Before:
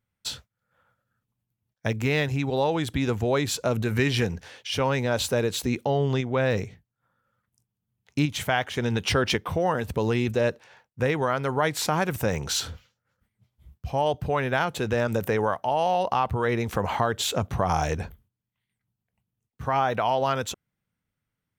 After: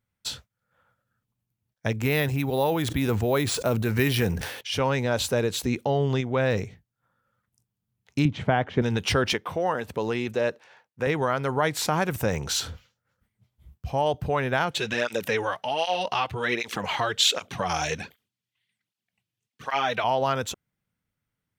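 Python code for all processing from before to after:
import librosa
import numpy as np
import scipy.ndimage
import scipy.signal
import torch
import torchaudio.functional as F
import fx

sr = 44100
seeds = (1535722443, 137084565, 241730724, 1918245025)

y = fx.chain(x, sr, fx.resample_bad(factor=3, down='none', up='hold'),
    fx.sustainer(db_per_s=53.0), at=(2.02, 4.61))
y = fx.chain(y, sr, fx.bandpass_edges(low_hz=160.0, high_hz=4400.0),
    fx.tilt_eq(slope=-4.0), at=(8.25, 8.82))
y = fx.chain(y, sr, fx.highpass(hz=310.0, slope=6),
    fx.high_shelf(hz=6000.0, db=-5.5), at=(9.33, 11.07))
y = fx.chain(y, sr, fx.weighting(curve='D'),
    fx.flanger_cancel(hz=1.3, depth_ms=5.1), at=(14.71, 20.04))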